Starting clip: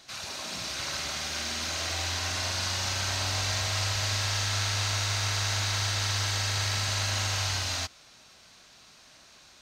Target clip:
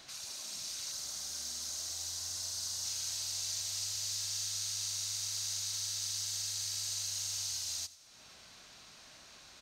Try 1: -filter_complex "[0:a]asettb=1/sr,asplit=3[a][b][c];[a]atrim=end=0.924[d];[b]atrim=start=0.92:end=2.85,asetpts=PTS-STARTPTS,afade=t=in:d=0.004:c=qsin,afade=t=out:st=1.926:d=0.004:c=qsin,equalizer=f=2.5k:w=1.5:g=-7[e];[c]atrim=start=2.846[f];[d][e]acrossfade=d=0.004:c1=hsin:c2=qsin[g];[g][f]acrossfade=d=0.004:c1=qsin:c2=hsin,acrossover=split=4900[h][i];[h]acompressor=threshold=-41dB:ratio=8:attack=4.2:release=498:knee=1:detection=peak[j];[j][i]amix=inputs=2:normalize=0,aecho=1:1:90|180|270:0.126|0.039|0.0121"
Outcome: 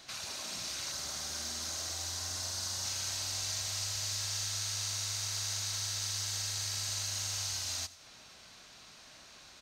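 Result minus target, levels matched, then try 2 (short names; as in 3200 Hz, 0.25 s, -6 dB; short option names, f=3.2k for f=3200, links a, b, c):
compressor: peak gain reduction -10 dB
-filter_complex "[0:a]asettb=1/sr,asplit=3[a][b][c];[a]atrim=end=0.924[d];[b]atrim=start=0.92:end=2.85,asetpts=PTS-STARTPTS,afade=t=in:d=0.004:c=qsin,afade=t=out:st=1.926:d=0.004:c=qsin,equalizer=f=2.5k:w=1.5:g=-7[e];[c]atrim=start=2.846[f];[d][e]acrossfade=d=0.004:c1=hsin:c2=qsin[g];[g][f]acrossfade=d=0.004:c1=qsin:c2=hsin,acrossover=split=4900[h][i];[h]acompressor=threshold=-52.5dB:ratio=8:attack=4.2:release=498:knee=1:detection=peak[j];[j][i]amix=inputs=2:normalize=0,aecho=1:1:90|180|270:0.126|0.039|0.0121"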